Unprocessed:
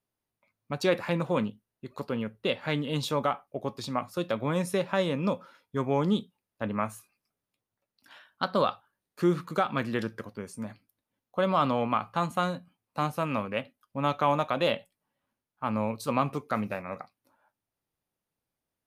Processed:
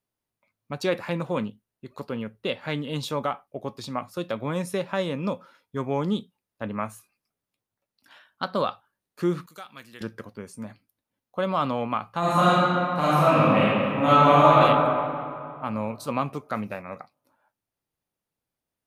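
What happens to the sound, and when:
9.46–10.01 s: pre-emphasis filter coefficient 0.9
12.19–14.57 s: reverb throw, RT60 2.5 s, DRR -11 dB

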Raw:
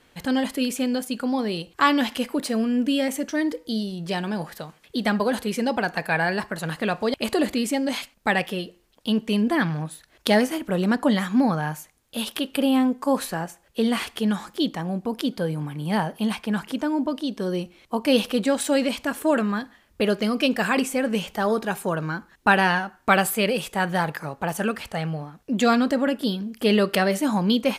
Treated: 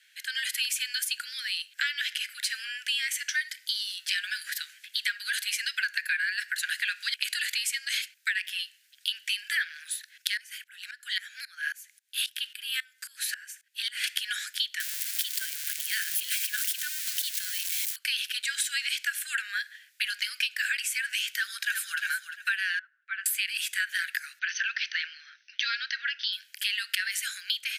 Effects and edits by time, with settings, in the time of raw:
1.83–3.38 s: treble shelf 8.1 kHz -6.5 dB
10.37–14.04 s: sawtooth tremolo in dB swelling 3.7 Hz, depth 23 dB
14.80–17.96 s: zero-crossing glitches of -20.5 dBFS
21.31–22.01 s: echo throw 350 ms, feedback 30%, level -6.5 dB
22.79–23.26 s: ladder band-pass 880 Hz, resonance 75%
24.39–26.33 s: brick-wall FIR low-pass 6.3 kHz
whole clip: level rider gain up to 11.5 dB; steep high-pass 1.5 kHz 96 dB/octave; compression 6:1, threshold -26 dBFS

